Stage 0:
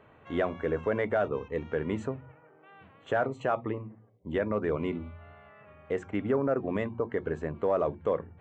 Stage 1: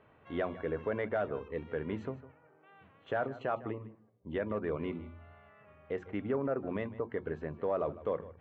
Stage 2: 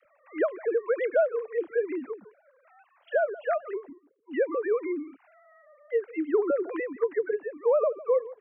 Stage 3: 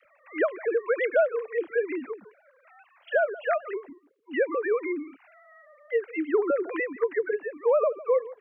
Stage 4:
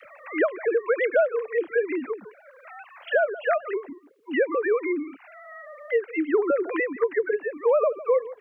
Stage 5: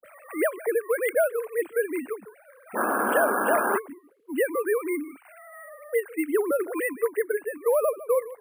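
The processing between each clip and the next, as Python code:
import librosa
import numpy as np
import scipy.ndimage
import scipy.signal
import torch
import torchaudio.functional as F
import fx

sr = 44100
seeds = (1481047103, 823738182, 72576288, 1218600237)

y1 = scipy.signal.sosfilt(scipy.signal.butter(4, 5100.0, 'lowpass', fs=sr, output='sos'), x)
y1 = y1 + 10.0 ** (-17.0 / 20.0) * np.pad(y1, (int(154 * sr / 1000.0), 0))[:len(y1)]
y1 = y1 * 10.0 ** (-5.5 / 20.0)
y2 = fx.sine_speech(y1, sr)
y2 = fx.dispersion(y2, sr, late='lows', ms=55.0, hz=450.0)
y2 = y2 * 10.0 ** (8.0 / 20.0)
y3 = fx.peak_eq(y2, sr, hz=2500.0, db=8.0, octaves=1.8)
y4 = fx.band_squash(y3, sr, depth_pct=40)
y4 = y4 * 10.0 ** (2.5 / 20.0)
y5 = fx.spec_paint(y4, sr, seeds[0], shape='noise', start_s=2.73, length_s=1.03, low_hz=200.0, high_hz=1700.0, level_db=-23.0)
y5 = fx.dispersion(y5, sr, late='highs', ms=57.0, hz=1300.0)
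y5 = np.repeat(scipy.signal.resample_poly(y5, 1, 4), 4)[:len(y5)]
y5 = y5 * 10.0 ** (-2.0 / 20.0)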